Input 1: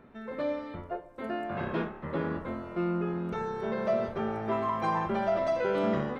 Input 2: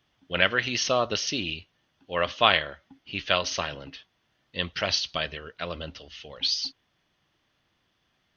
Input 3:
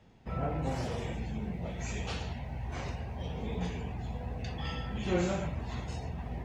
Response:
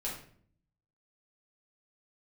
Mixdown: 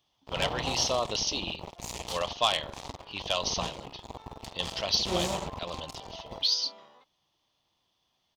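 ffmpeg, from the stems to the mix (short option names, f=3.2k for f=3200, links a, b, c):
-filter_complex "[0:a]bandpass=f=3.6k:t=q:w=0.6:csg=0,adelay=850,volume=-16dB[a];[1:a]asoftclip=type=tanh:threshold=-11.5dB,volume=-8.5dB[b];[2:a]acrusher=bits=4:mix=0:aa=0.5,volume=-3.5dB[c];[a][b][c]amix=inputs=3:normalize=0,firequalizer=gain_entry='entry(260,0);entry(950,9);entry(1500,-6);entry(3500,9)':delay=0.05:min_phase=1"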